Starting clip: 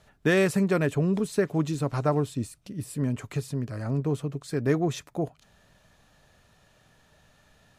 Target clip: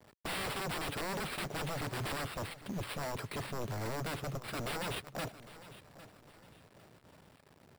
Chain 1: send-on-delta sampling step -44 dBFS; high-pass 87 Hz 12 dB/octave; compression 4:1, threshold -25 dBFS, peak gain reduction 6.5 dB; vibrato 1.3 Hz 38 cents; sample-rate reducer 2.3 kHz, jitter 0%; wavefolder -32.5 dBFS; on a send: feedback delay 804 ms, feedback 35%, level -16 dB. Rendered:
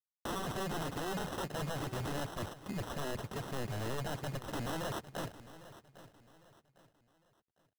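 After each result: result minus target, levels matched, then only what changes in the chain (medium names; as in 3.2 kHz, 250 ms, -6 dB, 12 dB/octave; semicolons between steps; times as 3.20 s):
compression: peak gain reduction +6.5 dB; send-on-delta sampling: distortion +9 dB; sample-rate reducer: distortion +6 dB
remove: compression 4:1, threshold -25 dBFS, peak gain reduction 6.5 dB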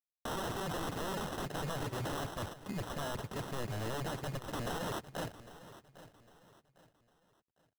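send-on-delta sampling: distortion +9 dB; sample-rate reducer: distortion +7 dB
change: send-on-delta sampling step -53 dBFS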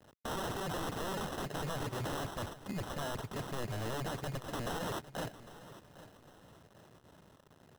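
sample-rate reducer: distortion +7 dB
change: sample-rate reducer 6.4 kHz, jitter 0%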